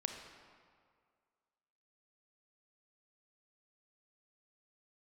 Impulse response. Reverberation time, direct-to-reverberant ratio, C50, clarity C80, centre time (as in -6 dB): 2.0 s, 4.0 dB, 5.0 dB, 6.5 dB, 45 ms